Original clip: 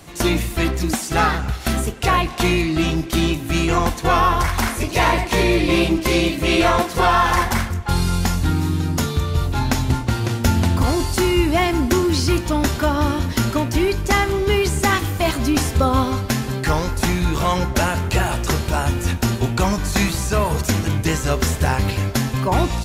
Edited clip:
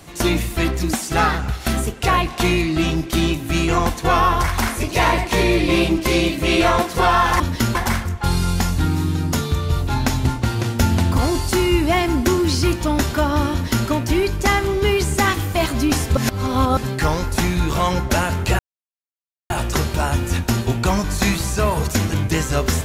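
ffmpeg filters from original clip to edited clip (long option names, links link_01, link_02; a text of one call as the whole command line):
ffmpeg -i in.wav -filter_complex "[0:a]asplit=6[link_01][link_02][link_03][link_04][link_05][link_06];[link_01]atrim=end=7.402[link_07];[link_02]atrim=start=13.168:end=13.522[link_08];[link_03]atrim=start=7.398:end=15.822[link_09];[link_04]atrim=start=15.818:end=16.422,asetpts=PTS-STARTPTS,areverse[link_10];[link_05]atrim=start=16.418:end=18.24,asetpts=PTS-STARTPTS,afade=type=out:start_time=1.818:duration=0.004:curve=hsin,apad=pad_dur=0.91[link_11];[link_06]atrim=start=18.24,asetpts=PTS-STARTPTS,afade=type=in:duration=0.004:curve=hsin[link_12];[link_07][link_08]acrossfade=duration=0.004:curve1=hsin:curve2=hsin[link_13];[link_13][link_09]acrossfade=duration=0.004:curve1=hsin:curve2=hsin[link_14];[link_14][link_10]acrossfade=duration=0.004:curve1=hsin:curve2=hsin[link_15];[link_11][link_12]concat=n=2:v=0:a=1[link_16];[link_15][link_16]acrossfade=duration=0.004:curve1=hsin:curve2=hsin" out.wav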